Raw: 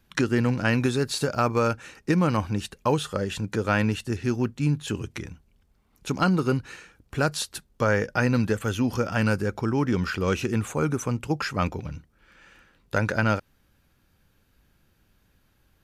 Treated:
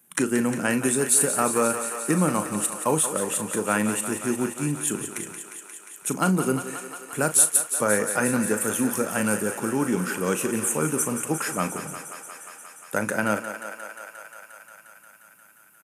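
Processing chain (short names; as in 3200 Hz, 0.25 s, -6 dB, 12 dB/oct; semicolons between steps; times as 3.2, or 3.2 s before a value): HPF 160 Hz 24 dB/oct; resonant high shelf 6600 Hz +13.5 dB, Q 3; doubler 38 ms -11.5 dB; on a send: thinning echo 0.177 s, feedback 83%, high-pass 350 Hz, level -9.5 dB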